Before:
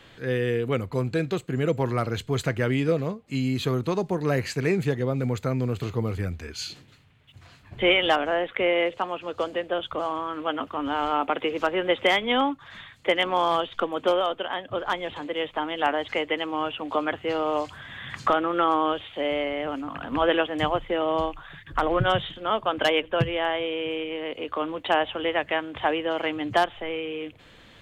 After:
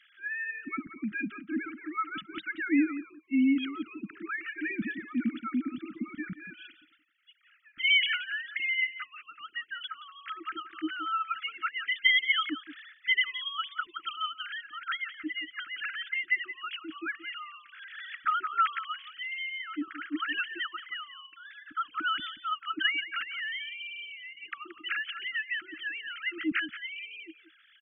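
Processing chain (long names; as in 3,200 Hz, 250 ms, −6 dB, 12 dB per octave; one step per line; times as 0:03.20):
three sine waves on the formant tracks
Chebyshev band-stop filter 320–1,300 Hz, order 5
slap from a distant wall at 30 metres, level −13 dB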